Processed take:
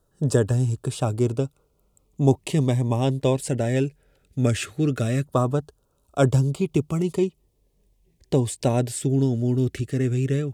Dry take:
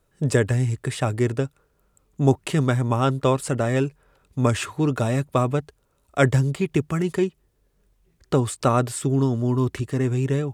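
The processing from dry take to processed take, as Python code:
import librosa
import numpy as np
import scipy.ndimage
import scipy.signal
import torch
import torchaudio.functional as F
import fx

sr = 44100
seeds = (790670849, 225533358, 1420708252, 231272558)

y = fx.filter_lfo_notch(x, sr, shape='saw_down', hz=0.19, low_hz=880.0, high_hz=2300.0, q=0.89)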